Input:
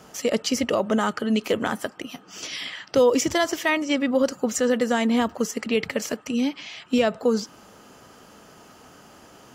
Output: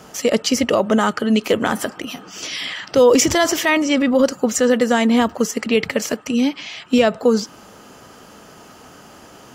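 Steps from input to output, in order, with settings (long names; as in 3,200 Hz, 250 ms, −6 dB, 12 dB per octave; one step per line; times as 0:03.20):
0:01.65–0:04.23: transient designer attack −2 dB, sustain +6 dB
level +6 dB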